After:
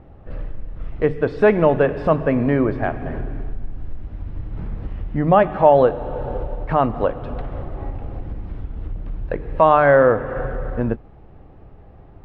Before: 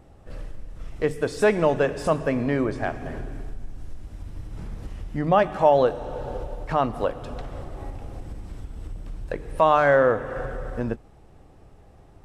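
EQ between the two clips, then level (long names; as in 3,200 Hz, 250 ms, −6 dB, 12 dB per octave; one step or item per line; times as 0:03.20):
high-frequency loss of the air 340 metres
bass and treble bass +1 dB, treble −4 dB
+6.0 dB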